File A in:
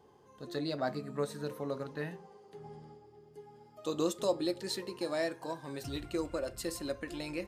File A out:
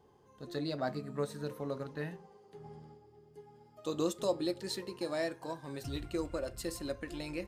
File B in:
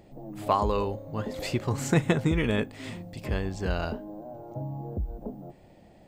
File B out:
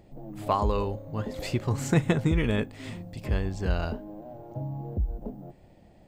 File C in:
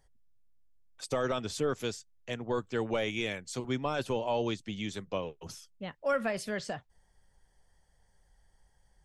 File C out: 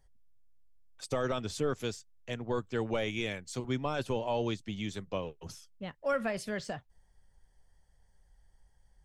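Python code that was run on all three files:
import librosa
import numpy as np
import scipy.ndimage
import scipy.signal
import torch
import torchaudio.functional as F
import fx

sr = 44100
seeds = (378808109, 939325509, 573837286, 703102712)

p1 = fx.low_shelf(x, sr, hz=120.0, db=7.0)
p2 = np.sign(p1) * np.maximum(np.abs(p1) - 10.0 ** (-49.0 / 20.0), 0.0)
p3 = p1 + F.gain(torch.from_numpy(p2), -12.0).numpy()
y = F.gain(torch.from_numpy(p3), -3.5).numpy()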